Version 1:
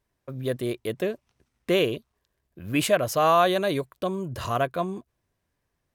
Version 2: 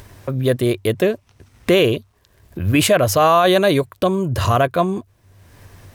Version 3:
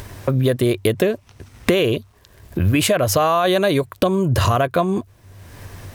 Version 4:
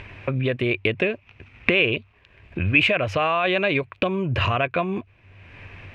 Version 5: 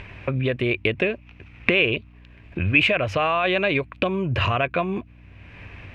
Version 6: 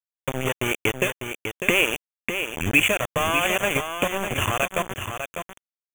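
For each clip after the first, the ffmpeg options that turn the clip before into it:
ffmpeg -i in.wav -filter_complex "[0:a]equalizer=frequency=97:width=5.5:gain=14,asplit=2[link_01][link_02];[link_02]acompressor=mode=upward:threshold=-24dB:ratio=2.5,volume=-1dB[link_03];[link_01][link_03]amix=inputs=2:normalize=0,alimiter=limit=-10dB:level=0:latency=1:release=11,volume=4.5dB" out.wav
ffmpeg -i in.wav -af "acompressor=threshold=-20dB:ratio=10,volume=6.5dB" out.wav
ffmpeg -i in.wav -af "lowpass=frequency=2500:width_type=q:width=6.9,volume=-6.5dB" out.wav
ffmpeg -i in.wav -af "aeval=exprs='val(0)+0.00447*(sin(2*PI*60*n/s)+sin(2*PI*2*60*n/s)/2+sin(2*PI*3*60*n/s)/3+sin(2*PI*4*60*n/s)/4+sin(2*PI*5*60*n/s)/5)':channel_layout=same" out.wav
ffmpeg -i in.wav -af "aeval=exprs='val(0)*gte(abs(val(0)),0.112)':channel_layout=same,asuperstop=centerf=4600:order=20:qfactor=1.9,aecho=1:1:599:0.422" out.wav

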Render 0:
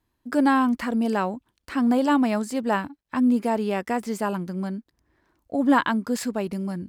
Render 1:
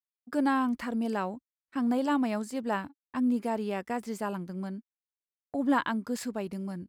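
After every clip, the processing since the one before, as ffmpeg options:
ffmpeg -i in.wav -af "agate=range=-52dB:threshold=-33dB:ratio=16:detection=peak,volume=-7dB" out.wav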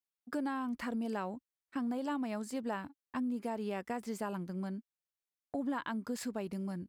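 ffmpeg -i in.wav -af "acompressor=threshold=-31dB:ratio=6,volume=-2dB" out.wav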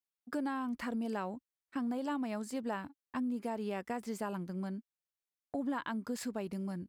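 ffmpeg -i in.wav -af anull out.wav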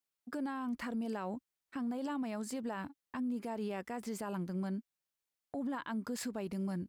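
ffmpeg -i in.wav -af "alimiter=level_in=10dB:limit=-24dB:level=0:latency=1:release=58,volume=-10dB,volume=3dB" out.wav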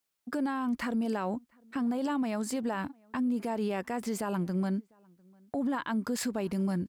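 ffmpeg -i in.wav -filter_complex "[0:a]asplit=2[link_01][link_02];[link_02]adelay=699.7,volume=-29dB,highshelf=frequency=4000:gain=-15.7[link_03];[link_01][link_03]amix=inputs=2:normalize=0,volume=7dB" out.wav

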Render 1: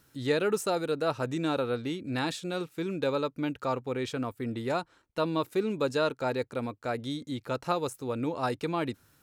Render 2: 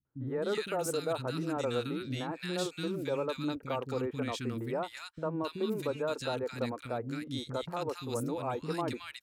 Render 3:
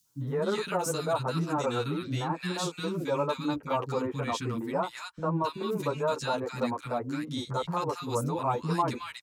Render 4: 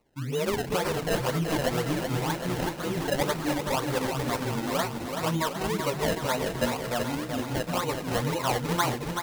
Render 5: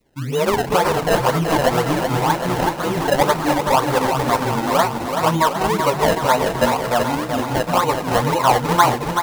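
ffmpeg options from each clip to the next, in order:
ffmpeg -i in.wav -filter_complex "[0:a]agate=range=-18dB:threshold=-55dB:ratio=16:detection=peak,acrossover=split=6300[link_01][link_02];[link_01]alimiter=limit=-22.5dB:level=0:latency=1:release=132[link_03];[link_03][link_02]amix=inputs=2:normalize=0,acrossover=split=270|1500[link_04][link_05][link_06];[link_05]adelay=50[link_07];[link_06]adelay=270[link_08];[link_04][link_07][link_08]amix=inputs=3:normalize=0" out.wav
ffmpeg -i in.wav -filter_complex "[0:a]equalizer=frequency=160:width_type=o:width=0.67:gain=6,equalizer=frequency=1000:width_type=o:width=0.67:gain=10,equalizer=frequency=6300:width_type=o:width=0.67:gain=5,acrossover=split=230|460|3500[link_01][link_02][link_03][link_04];[link_04]acompressor=mode=upward:threshold=-54dB:ratio=2.5[link_05];[link_01][link_02][link_03][link_05]amix=inputs=4:normalize=0,asplit=2[link_06][link_07];[link_07]adelay=9.4,afreqshift=3[link_08];[link_06][link_08]amix=inputs=2:normalize=1,volume=4.5dB" out.wav
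ffmpeg -i in.wav -filter_complex "[0:a]acrusher=samples=26:mix=1:aa=0.000001:lfo=1:lforange=26:lforate=2,asplit=2[link_01][link_02];[link_02]aecho=0:1:379|758|1137|1516|1895|2274|2653|3032:0.501|0.296|0.174|0.103|0.0607|0.0358|0.0211|0.0125[link_03];[link_01][link_03]amix=inputs=2:normalize=0,volume=1dB" out.wav
ffmpeg -i in.wav -af "adynamicequalizer=threshold=0.00794:dfrequency=900:dqfactor=1.1:tfrequency=900:tqfactor=1.1:attack=5:release=100:ratio=0.375:range=4:mode=boostabove:tftype=bell,volume=7dB" out.wav

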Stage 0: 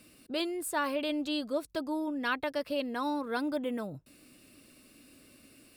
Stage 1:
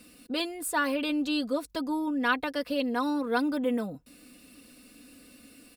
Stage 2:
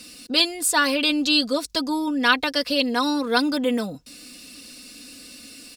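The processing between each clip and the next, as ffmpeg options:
ffmpeg -i in.wav -af "aecho=1:1:4.1:0.64,volume=2.5dB" out.wav
ffmpeg -i in.wav -af "equalizer=frequency=5300:width_type=o:width=1.8:gain=14,volume=5dB" out.wav

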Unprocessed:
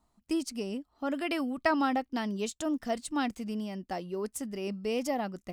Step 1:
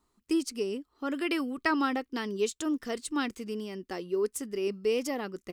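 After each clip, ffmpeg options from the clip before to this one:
ffmpeg -i in.wav -af "firequalizer=gain_entry='entry(210,0);entry(410,12);entry(650,-5);entry(1100,6)':delay=0.05:min_phase=1,volume=-4dB" out.wav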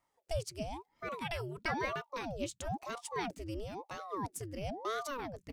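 ffmpeg -i in.wav -af "asubboost=boost=7.5:cutoff=150,aeval=exprs='val(0)*sin(2*PI*530*n/s+530*0.8/1*sin(2*PI*1*n/s))':channel_layout=same,volume=-4dB" out.wav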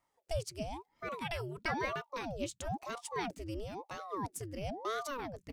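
ffmpeg -i in.wav -af anull out.wav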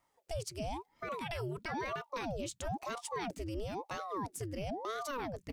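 ffmpeg -i in.wav -af "alimiter=level_in=9dB:limit=-24dB:level=0:latency=1:release=31,volume=-9dB,volume=3.5dB" out.wav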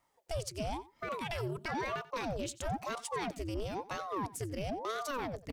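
ffmpeg -i in.wav -filter_complex "[0:a]asplit=2[link_01][link_02];[link_02]acrusher=bits=4:mix=0:aa=0.5,volume=-10dB[link_03];[link_01][link_03]amix=inputs=2:normalize=0,aecho=1:1:90:0.119,volume=1dB" out.wav

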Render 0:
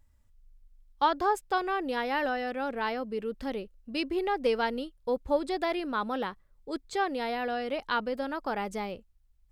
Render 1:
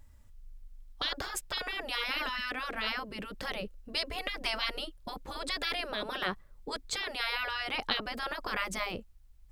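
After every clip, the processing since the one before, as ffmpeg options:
ffmpeg -i in.wav -af "afftfilt=real='re*lt(hypot(re,im),0.0708)':imag='im*lt(hypot(re,im),0.0708)':win_size=1024:overlap=0.75,volume=8dB" out.wav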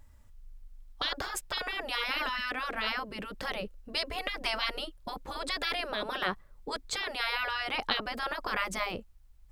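ffmpeg -i in.wav -af "equalizer=frequency=960:width_type=o:width=2:gain=3" out.wav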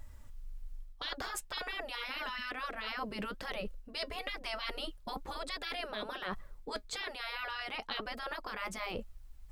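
ffmpeg -i in.wav -af "areverse,acompressor=threshold=-42dB:ratio=5,areverse,flanger=delay=1.5:depth=3.3:regen=70:speed=1.1:shape=sinusoidal,volume=9dB" out.wav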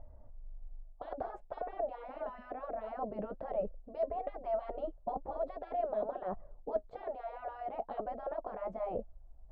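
ffmpeg -i in.wav -af "lowpass=frequency=670:width_type=q:width=4.9,volume=-2.5dB" out.wav

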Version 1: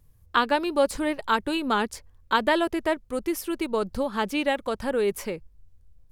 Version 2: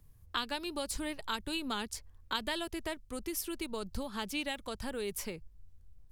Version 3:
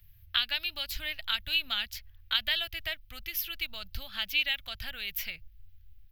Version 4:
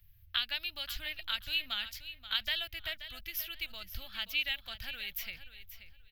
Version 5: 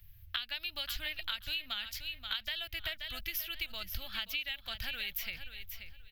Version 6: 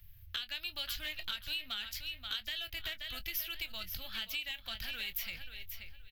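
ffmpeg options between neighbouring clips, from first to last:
ffmpeg -i in.wav -filter_complex "[0:a]equalizer=frequency=530:width_type=o:width=0.23:gain=-5,acrossover=split=130|3000[link_01][link_02][link_03];[link_02]acompressor=threshold=-41dB:ratio=2.5[link_04];[link_01][link_04][link_03]amix=inputs=3:normalize=0,volume=-1.5dB" out.wav
ffmpeg -i in.wav -af "firequalizer=gain_entry='entry(110,0);entry(170,-15);entry(430,-26);entry(650,-6);entry(990,-15);entry(1400,0);entry(2000,6);entry(2900,10);entry(9200,-18);entry(13000,11)':delay=0.05:min_phase=1,volume=2.5dB" out.wav
ffmpeg -i in.wav -af "aecho=1:1:530|1060|1590:0.237|0.0522|0.0115,volume=-4.5dB" out.wav
ffmpeg -i in.wav -af "acompressor=threshold=-39dB:ratio=6,volume=5.5dB" out.wav
ffmpeg -i in.wav -filter_complex "[0:a]acrossover=split=2900[link_01][link_02];[link_01]asoftclip=type=tanh:threshold=-38.5dB[link_03];[link_03][link_02]amix=inputs=2:normalize=0,asplit=2[link_04][link_05];[link_05]adelay=23,volume=-13dB[link_06];[link_04][link_06]amix=inputs=2:normalize=0" out.wav

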